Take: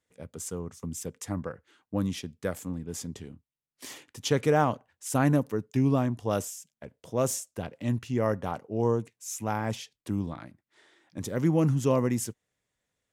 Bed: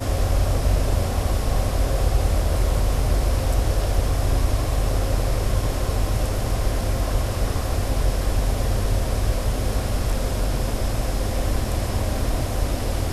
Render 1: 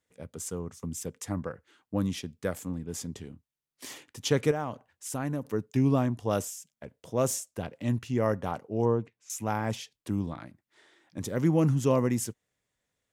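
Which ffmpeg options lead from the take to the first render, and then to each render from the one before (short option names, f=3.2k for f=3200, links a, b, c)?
-filter_complex "[0:a]asettb=1/sr,asplit=3[a][b][c];[a]atrim=end=4.514[d];[b]atrim=start=4.51:end=5.45,asetpts=PTS-STARTPTS,afade=t=in:d=0.004:c=qsin,afade=t=out:st=0.936:d=0.004:c=qsin,acompressor=threshold=-35dB:ratio=2:attack=3.2:release=140:knee=1:detection=peak[e];[c]atrim=start=5.446[f];[d][e]acrossfade=d=0.004:c1=hsin:c2=qsin[g];[g][f]acrossfade=d=0.004:c1=qsin:c2=hsin,asettb=1/sr,asplit=3[h][i][j];[h]atrim=end=8.854[k];[i]atrim=start=8.85:end=9.3,asetpts=PTS-STARTPTS,afade=t=in:d=0.004:c=qsin,afade=t=out:st=0.446:d=0.004:c=qsin,lowpass=2.7k[l];[j]atrim=start=9.296[m];[k][l]acrossfade=d=0.004:c1=hsin:c2=qsin[n];[n][m]acrossfade=d=0.004:c1=qsin:c2=hsin"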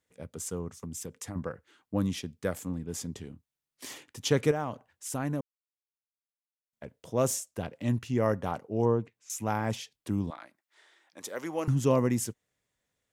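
-filter_complex "[0:a]asettb=1/sr,asplit=3[a][b][c];[a]atrim=end=0.764[d];[b]atrim=start=0.76:end=1.36,asetpts=PTS-STARTPTS,afade=t=in:d=0.004:c=qsin,afade=t=out:st=0.596:d=0.004:c=qsin,acompressor=threshold=-34dB:ratio=6:attack=3.2:release=140:knee=1:detection=peak[e];[c]atrim=start=1.356[f];[d][e]acrossfade=d=0.004:c1=hsin:c2=qsin[g];[g][f]acrossfade=d=0.004:c1=qsin:c2=hsin,asettb=1/sr,asplit=3[h][i][j];[h]atrim=end=10.304[k];[i]atrim=start=10.3:end=11.68,asetpts=PTS-STARTPTS,afade=t=in:d=0.004:c=qsin,afade=t=out:st=1.376:d=0.004:c=qsin,highpass=590[l];[j]atrim=start=11.676[m];[k][l]acrossfade=d=0.004:c1=hsin:c2=qsin[n];[n][m]acrossfade=d=0.004:c1=qsin:c2=hsin,asplit=3[o][p][q];[o]atrim=end=5.41,asetpts=PTS-STARTPTS,afade=t=out:st=5.406:d=0.004:c=hsin[r];[p]atrim=start=5.41:end=6.73,asetpts=PTS-STARTPTS,volume=0[s];[q]atrim=start=6.73,asetpts=PTS-STARTPTS,afade=t=in:d=0.004:c=hsin[t];[r][s][t]concat=n=3:v=0:a=1"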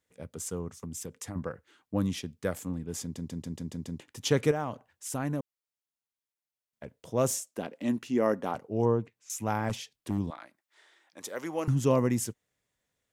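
-filter_complex "[0:a]asettb=1/sr,asplit=3[a][b][c];[a]atrim=end=7.484[d];[b]atrim=start=7.48:end=8.55,asetpts=PTS-STARTPTS,afade=t=in:d=0.004:c=qsin,afade=t=out:st=1.066:d=0.004:c=qsin,lowshelf=f=160:t=q:w=1.5:g=-13.5[e];[c]atrim=start=8.546[f];[d][e]acrossfade=d=0.004:c1=hsin:c2=qsin[g];[g][f]acrossfade=d=0.004:c1=qsin:c2=hsin,asplit=3[h][i][j];[h]afade=t=out:st=9.68:d=0.02[k];[i]aeval=exprs='0.0708*(abs(mod(val(0)/0.0708+3,4)-2)-1)':c=same,afade=t=in:st=9.68:d=0.02,afade=t=out:st=10.17:d=0.02[l];[j]afade=t=in:st=10.17:d=0.02[m];[k][l][m]amix=inputs=3:normalize=0,asplit=8[n][o][p][q][r][s][t][u];[n]atrim=end=3.162[v];[o]atrim=start=3.018:end=3.162[w];[p]atrim=start=3.018:end=3.162[x];[q]atrim=start=3.018:end=3.162[y];[r]atrim=start=3.018:end=3.162[z];[s]atrim=start=3.018:end=3.162[aa];[t]atrim=start=3.018:end=3.162[ab];[u]atrim=start=3.998[ac];[v][w]acrossfade=d=0.004:c1=hsin:c2=hsin[ad];[ad][x]acrossfade=d=0.004:c1=hsin:c2=hsin[ae];[ae][y]acrossfade=d=0.004:c1=hsin:c2=hsin[af];[af][z]acrossfade=d=0.004:c1=hsin:c2=hsin[ag];[ag][aa]acrossfade=d=0.004:c1=hsin:c2=hsin[ah];[ah][ab]acrossfade=d=0.004:c1=hsin:c2=hsin[ai];[ai][ac]acrossfade=d=0.004:c1=hsin:c2=hsin"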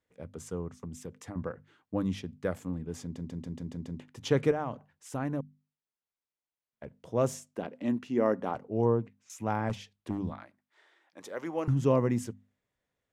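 -af "lowpass=f=2.1k:p=1,bandreject=f=50:t=h:w=6,bandreject=f=100:t=h:w=6,bandreject=f=150:t=h:w=6,bandreject=f=200:t=h:w=6,bandreject=f=250:t=h:w=6"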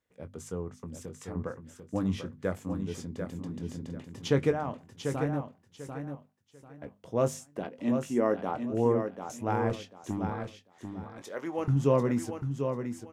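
-filter_complex "[0:a]asplit=2[a][b];[b]adelay=21,volume=-10dB[c];[a][c]amix=inputs=2:normalize=0,aecho=1:1:743|1486|2229:0.447|0.112|0.0279"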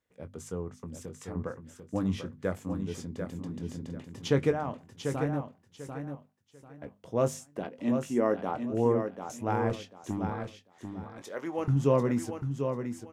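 -af anull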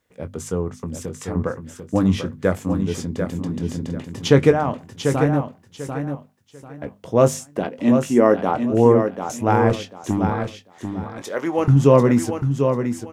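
-af "volume=12dB,alimiter=limit=-1dB:level=0:latency=1"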